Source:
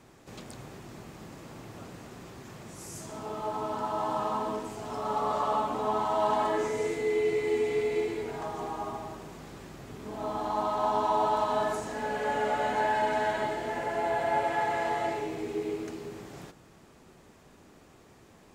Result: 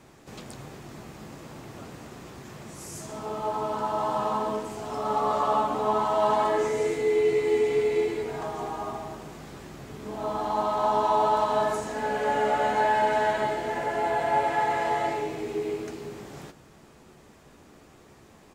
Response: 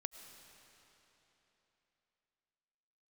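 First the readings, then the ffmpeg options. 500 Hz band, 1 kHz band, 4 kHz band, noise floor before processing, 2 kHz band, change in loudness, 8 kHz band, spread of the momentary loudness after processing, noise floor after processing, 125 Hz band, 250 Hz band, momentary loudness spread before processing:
+4.0 dB, +4.0 dB, +3.0 dB, -56 dBFS, +2.5 dB, +4.0 dB, +3.0 dB, 20 LU, -54 dBFS, +3.0 dB, +2.0 dB, 19 LU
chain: -filter_complex "[0:a]asplit=2[s0][s1];[s1]adelay=14,volume=0.299[s2];[s0][s2]amix=inputs=2:normalize=0,volume=1.33"

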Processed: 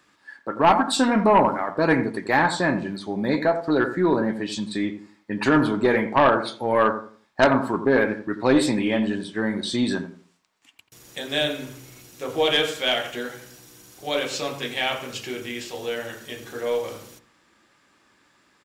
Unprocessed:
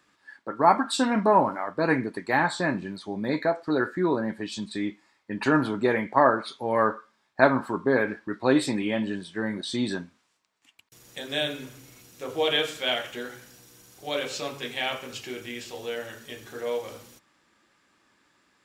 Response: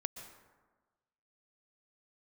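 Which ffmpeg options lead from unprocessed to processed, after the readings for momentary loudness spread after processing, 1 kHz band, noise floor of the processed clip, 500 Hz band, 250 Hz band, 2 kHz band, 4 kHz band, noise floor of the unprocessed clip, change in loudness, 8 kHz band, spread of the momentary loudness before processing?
16 LU, +3.0 dB, -63 dBFS, +3.5 dB, +4.5 dB, +3.5 dB, +4.0 dB, -70 dBFS, +3.5 dB, +4.5 dB, 16 LU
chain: -filter_complex "[0:a]asplit=2[s0][s1];[s1]adelay=86,lowpass=f=990:p=1,volume=0.335,asplit=2[s2][s3];[s3]adelay=86,lowpass=f=990:p=1,volume=0.33,asplit=2[s4][s5];[s5]adelay=86,lowpass=f=990:p=1,volume=0.33,asplit=2[s6][s7];[s7]adelay=86,lowpass=f=990:p=1,volume=0.33[s8];[s2][s4][s6][s8]amix=inputs=4:normalize=0[s9];[s0][s9]amix=inputs=2:normalize=0,aeval=exprs='0.75*(cos(1*acos(clip(val(0)/0.75,-1,1)))-cos(1*PI/2))+0.335*(cos(2*acos(clip(val(0)/0.75,-1,1)))-cos(2*PI/2))+0.266*(cos(5*acos(clip(val(0)/0.75,-1,1)))-cos(5*PI/2))':c=same,volume=0.596"

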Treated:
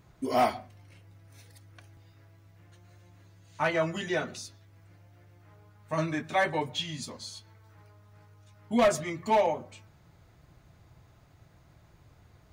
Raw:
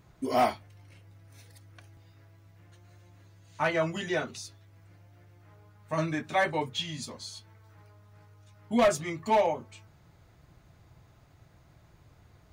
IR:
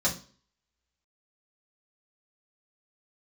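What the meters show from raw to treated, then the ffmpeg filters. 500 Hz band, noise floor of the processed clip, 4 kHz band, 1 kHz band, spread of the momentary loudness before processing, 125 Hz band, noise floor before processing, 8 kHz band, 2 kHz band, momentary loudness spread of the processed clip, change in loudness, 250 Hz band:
0.0 dB, -60 dBFS, 0.0 dB, 0.0 dB, 17 LU, 0.0 dB, -60 dBFS, 0.0 dB, 0.0 dB, 17 LU, 0.0 dB, 0.0 dB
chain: -filter_complex "[0:a]asplit=2[s0][s1];[1:a]atrim=start_sample=2205,lowpass=3200,adelay=110[s2];[s1][s2]afir=irnorm=-1:irlink=0,volume=0.0282[s3];[s0][s3]amix=inputs=2:normalize=0"

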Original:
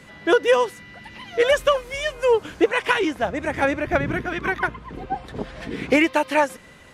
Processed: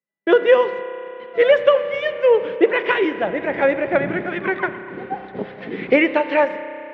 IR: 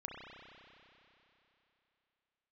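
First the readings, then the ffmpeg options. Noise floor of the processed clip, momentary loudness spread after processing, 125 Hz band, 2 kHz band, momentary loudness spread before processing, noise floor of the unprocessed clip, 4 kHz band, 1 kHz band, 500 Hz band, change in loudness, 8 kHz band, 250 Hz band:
-38 dBFS, 16 LU, -3.0 dB, +1.5 dB, 14 LU, -46 dBFS, -2.0 dB, 0.0 dB, +4.5 dB, +3.5 dB, under -20 dB, +1.5 dB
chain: -filter_complex "[0:a]agate=range=0.00316:threshold=0.0158:ratio=16:detection=peak,highpass=160,equalizer=f=190:t=q:w=4:g=7,equalizer=f=380:t=q:w=4:g=6,equalizer=f=550:t=q:w=4:g=7,equalizer=f=2000:t=q:w=4:g=5,lowpass=f=3600:w=0.5412,lowpass=f=3600:w=1.3066,asplit=2[s0][s1];[1:a]atrim=start_sample=2205[s2];[s1][s2]afir=irnorm=-1:irlink=0,volume=0.501[s3];[s0][s3]amix=inputs=2:normalize=0,volume=0.668"

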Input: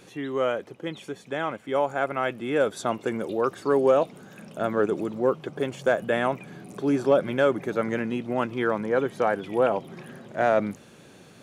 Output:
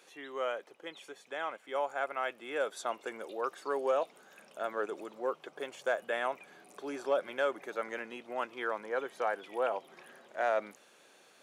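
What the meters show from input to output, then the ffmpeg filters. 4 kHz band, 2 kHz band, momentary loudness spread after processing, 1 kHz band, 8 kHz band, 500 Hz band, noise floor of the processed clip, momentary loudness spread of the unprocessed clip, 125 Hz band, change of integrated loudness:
-6.5 dB, -6.5 dB, 14 LU, -7.5 dB, no reading, -10.5 dB, -62 dBFS, 13 LU, under -25 dB, -10.0 dB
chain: -af "highpass=570,volume=0.473"

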